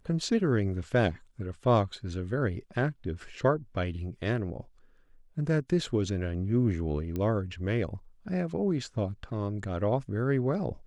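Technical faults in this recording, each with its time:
7.16 s: pop -21 dBFS

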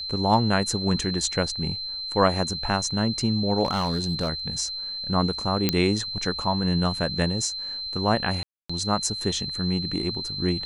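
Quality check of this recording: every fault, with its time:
whine 4.1 kHz -30 dBFS
3.64–4.30 s: clipped -19.5 dBFS
5.69 s: pop -5 dBFS
8.43–8.70 s: dropout 265 ms

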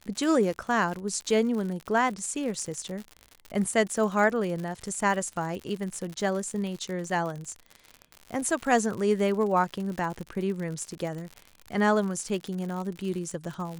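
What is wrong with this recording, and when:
crackle 87 per s -33 dBFS

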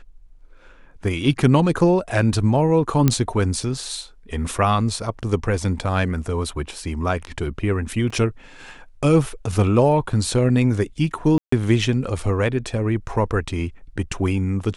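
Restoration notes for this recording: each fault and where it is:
3.08 s: pop -3 dBFS
8.10 s: dropout 4.2 ms
11.38–11.52 s: dropout 144 ms

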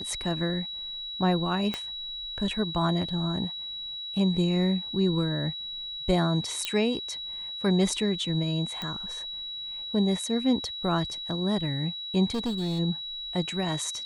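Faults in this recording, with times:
whine 3.9 kHz -34 dBFS
1.74 s: pop -16 dBFS
6.65 s: pop -12 dBFS
8.82 s: pop -19 dBFS
12.31–12.80 s: clipped -25.5 dBFS

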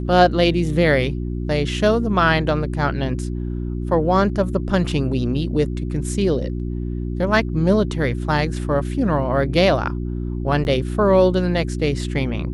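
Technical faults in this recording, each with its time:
hum 60 Hz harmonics 6 -25 dBFS
10.64–10.65 s: dropout 9.8 ms

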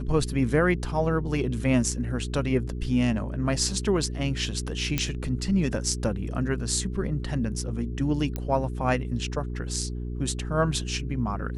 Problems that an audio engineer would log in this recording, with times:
hum 60 Hz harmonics 7 -32 dBFS
4.98 s: pop -9 dBFS
8.36 s: pop -16 dBFS

